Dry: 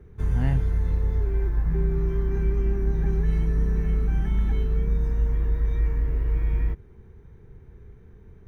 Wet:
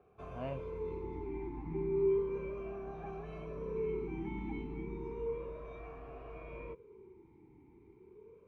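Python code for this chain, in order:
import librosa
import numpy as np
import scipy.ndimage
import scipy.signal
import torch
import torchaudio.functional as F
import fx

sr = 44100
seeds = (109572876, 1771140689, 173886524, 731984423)

y = fx.vowel_sweep(x, sr, vowels='a-u', hz=0.33)
y = F.gain(torch.from_numpy(y), 7.5).numpy()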